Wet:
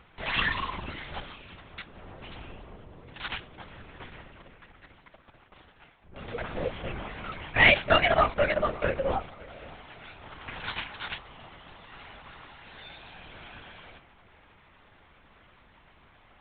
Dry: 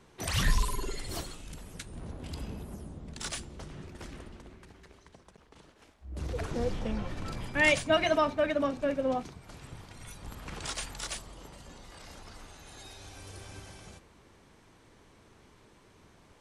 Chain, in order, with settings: tilt EQ +4.5 dB/octave; vibrato 2 Hz 80 cents; distance through air 420 m; on a send: tape echo 565 ms, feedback 41%, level -19 dB, low-pass 1.4 kHz; on the sum: LPC vocoder at 8 kHz whisper; trim +7 dB

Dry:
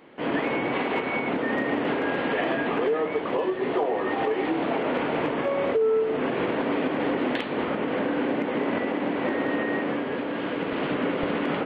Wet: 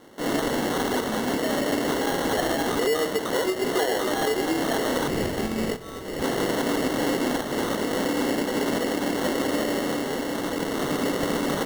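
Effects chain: 5.08–6.22 s: resonant high-pass 2.1 kHz, resonance Q 5.9; sample-and-hold 18×; trim +1 dB

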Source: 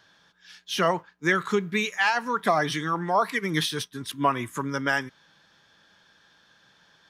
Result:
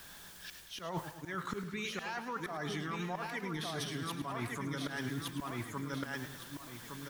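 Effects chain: on a send: feedback delay 1163 ms, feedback 19%, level -7.5 dB; on the sum: slow attack 202 ms; added noise white -58 dBFS; peak limiter -20 dBFS, peak gain reduction 9.5 dB; reverse; compression 12:1, threshold -40 dBFS, peak gain reduction 15.5 dB; reverse; bass shelf 89 Hz +11 dB; modulated delay 106 ms, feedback 62%, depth 126 cents, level -11 dB; trim +3.5 dB

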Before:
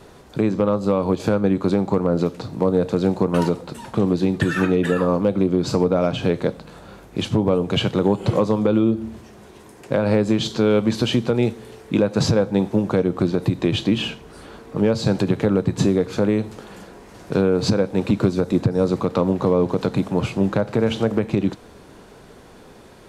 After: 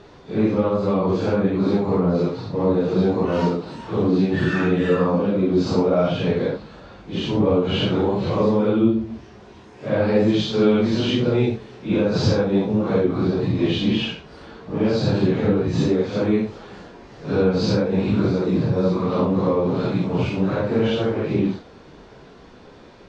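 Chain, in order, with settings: phase randomisation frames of 200 ms; low-pass 5.6 kHz 24 dB/octave

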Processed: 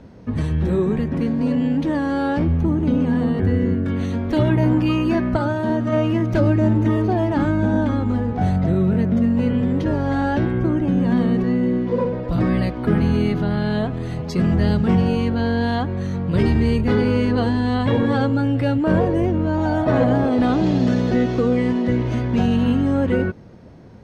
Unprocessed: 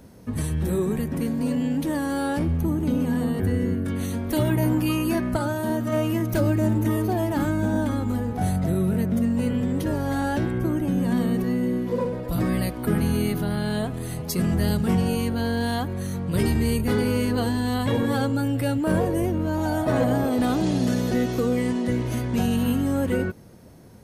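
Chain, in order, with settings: distance through air 170 m; trim +5 dB

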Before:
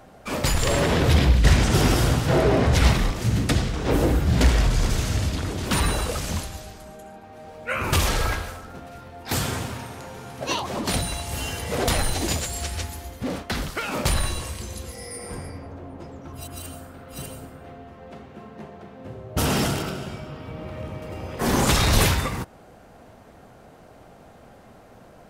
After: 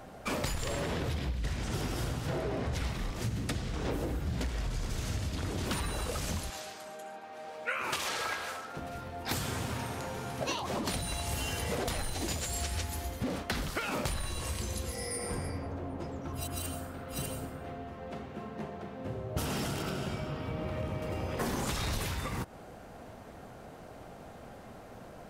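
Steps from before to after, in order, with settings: 6.50–8.77 s: frequency weighting A; compression 20:1, threshold -30 dBFS, peak gain reduction 20.5 dB

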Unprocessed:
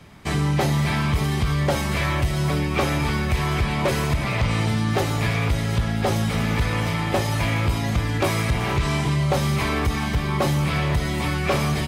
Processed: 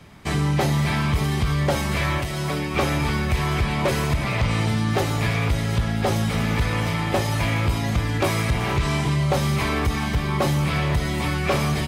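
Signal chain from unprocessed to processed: 2.18–2.75 s: bass shelf 120 Hz -11.5 dB

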